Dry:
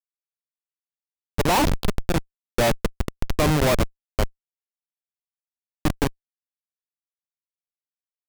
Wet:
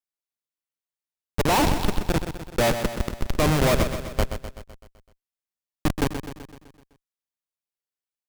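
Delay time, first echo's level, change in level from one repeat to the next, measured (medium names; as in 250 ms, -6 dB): 127 ms, -9.0 dB, -5.0 dB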